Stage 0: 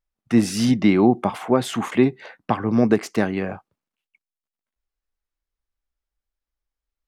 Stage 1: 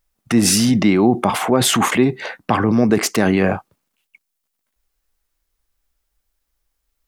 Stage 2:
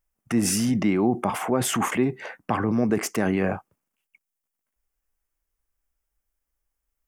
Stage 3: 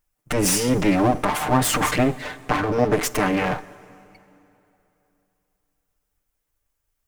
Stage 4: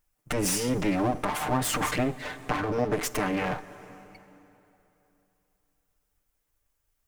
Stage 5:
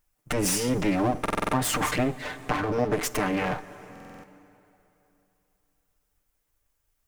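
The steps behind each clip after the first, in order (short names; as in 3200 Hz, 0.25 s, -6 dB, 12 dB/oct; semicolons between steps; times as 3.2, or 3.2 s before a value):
high shelf 6600 Hz +8 dB; in parallel at +3 dB: negative-ratio compressor -26 dBFS, ratio -1
bell 4000 Hz -11 dB 0.56 oct; gain -7.5 dB
minimum comb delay 6.7 ms; plate-style reverb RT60 3.1 s, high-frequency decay 0.8×, DRR 18.5 dB; gain +6 dB
compressor 1.5:1, threshold -36 dBFS, peak gain reduction 8.5 dB
stuck buffer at 1.21/3.91, samples 2048, times 6; gain +1.5 dB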